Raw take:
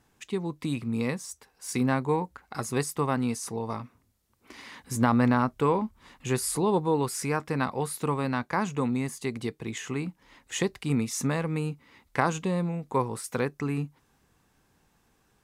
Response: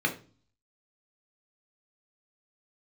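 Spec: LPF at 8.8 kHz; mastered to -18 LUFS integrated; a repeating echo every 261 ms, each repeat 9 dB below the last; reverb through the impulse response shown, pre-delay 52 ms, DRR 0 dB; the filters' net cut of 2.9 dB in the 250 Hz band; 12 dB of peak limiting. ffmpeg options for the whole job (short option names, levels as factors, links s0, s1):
-filter_complex "[0:a]lowpass=8800,equalizer=f=250:t=o:g=-3.5,alimiter=limit=0.106:level=0:latency=1,aecho=1:1:261|522|783|1044:0.355|0.124|0.0435|0.0152,asplit=2[s0][s1];[1:a]atrim=start_sample=2205,adelay=52[s2];[s1][s2]afir=irnorm=-1:irlink=0,volume=0.316[s3];[s0][s3]amix=inputs=2:normalize=0,volume=3.16"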